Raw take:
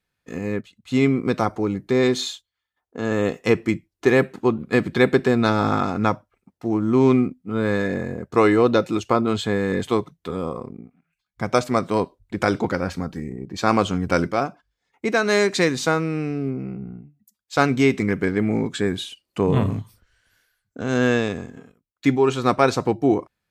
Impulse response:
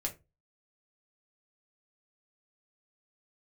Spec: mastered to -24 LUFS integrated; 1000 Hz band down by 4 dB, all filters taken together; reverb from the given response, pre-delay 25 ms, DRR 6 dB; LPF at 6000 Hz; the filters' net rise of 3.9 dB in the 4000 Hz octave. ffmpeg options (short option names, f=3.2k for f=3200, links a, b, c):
-filter_complex "[0:a]lowpass=6k,equalizer=f=1k:t=o:g=-6,equalizer=f=4k:t=o:g=5.5,asplit=2[a][b];[1:a]atrim=start_sample=2205,adelay=25[c];[b][c]afir=irnorm=-1:irlink=0,volume=-7.5dB[d];[a][d]amix=inputs=2:normalize=0,volume=-3dB"